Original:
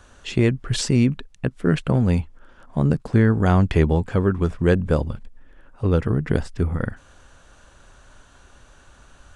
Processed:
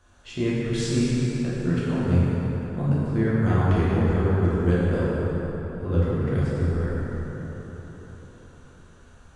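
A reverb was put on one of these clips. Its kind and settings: plate-style reverb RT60 4.4 s, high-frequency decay 0.55×, DRR -9 dB; gain -13 dB

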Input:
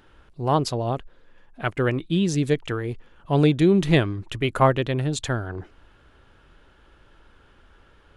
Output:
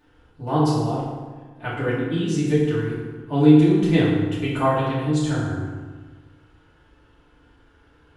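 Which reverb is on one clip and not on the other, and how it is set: FDN reverb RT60 1.4 s, low-frequency decay 1.25×, high-frequency decay 0.65×, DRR -9.5 dB; gain -11 dB

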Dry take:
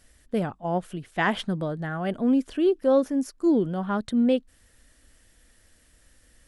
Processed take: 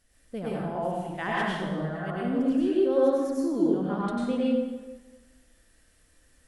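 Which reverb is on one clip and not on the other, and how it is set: plate-style reverb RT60 1.3 s, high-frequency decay 0.7×, pre-delay 85 ms, DRR -7 dB; gain -10 dB

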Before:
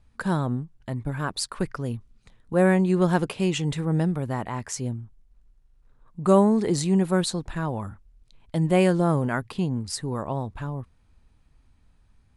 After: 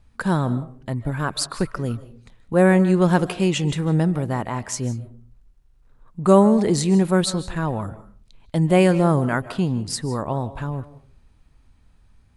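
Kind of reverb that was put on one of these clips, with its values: digital reverb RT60 0.41 s, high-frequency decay 0.4×, pre-delay 0.115 s, DRR 15 dB; gain +4 dB

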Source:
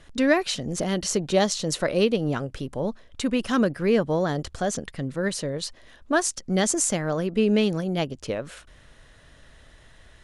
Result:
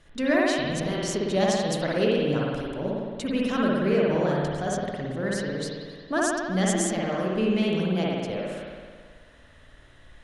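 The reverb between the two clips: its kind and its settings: spring tank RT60 1.7 s, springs 54 ms, chirp 40 ms, DRR -4.5 dB; gain -6 dB

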